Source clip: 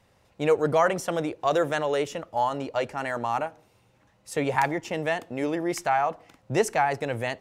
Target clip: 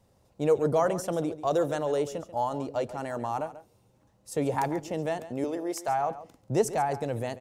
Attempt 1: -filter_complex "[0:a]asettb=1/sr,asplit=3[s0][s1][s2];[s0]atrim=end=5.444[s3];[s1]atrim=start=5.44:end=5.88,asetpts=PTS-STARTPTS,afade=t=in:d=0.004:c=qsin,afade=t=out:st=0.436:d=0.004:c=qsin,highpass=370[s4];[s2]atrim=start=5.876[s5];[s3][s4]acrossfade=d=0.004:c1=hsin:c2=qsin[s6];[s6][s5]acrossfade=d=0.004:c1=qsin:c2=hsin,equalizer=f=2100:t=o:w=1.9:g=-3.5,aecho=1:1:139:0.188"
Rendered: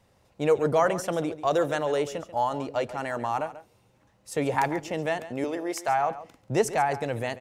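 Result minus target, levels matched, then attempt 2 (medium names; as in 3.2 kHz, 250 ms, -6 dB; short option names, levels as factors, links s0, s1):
2 kHz band +6.0 dB
-filter_complex "[0:a]asettb=1/sr,asplit=3[s0][s1][s2];[s0]atrim=end=5.444[s3];[s1]atrim=start=5.44:end=5.88,asetpts=PTS-STARTPTS,afade=t=in:d=0.004:c=qsin,afade=t=out:st=0.436:d=0.004:c=qsin,highpass=370[s4];[s2]atrim=start=5.876[s5];[s3][s4]acrossfade=d=0.004:c1=hsin:c2=qsin[s6];[s6][s5]acrossfade=d=0.004:c1=qsin:c2=hsin,equalizer=f=2100:t=o:w=1.9:g=-12.5,aecho=1:1:139:0.188"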